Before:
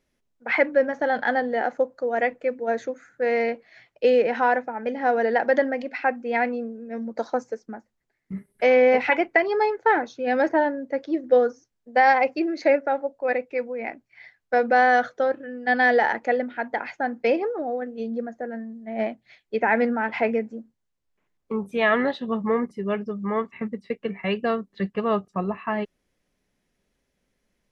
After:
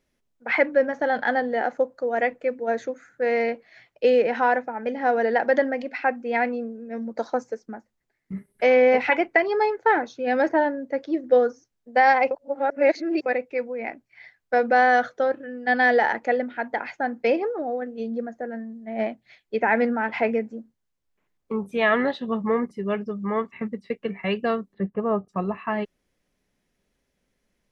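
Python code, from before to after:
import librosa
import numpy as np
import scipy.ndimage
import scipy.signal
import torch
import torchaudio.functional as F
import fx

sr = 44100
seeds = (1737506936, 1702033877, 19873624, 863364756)

y = fx.lowpass(x, sr, hz=1100.0, slope=12, at=(24.73, 25.27), fade=0.02)
y = fx.edit(y, sr, fx.reverse_span(start_s=12.31, length_s=0.95), tone=tone)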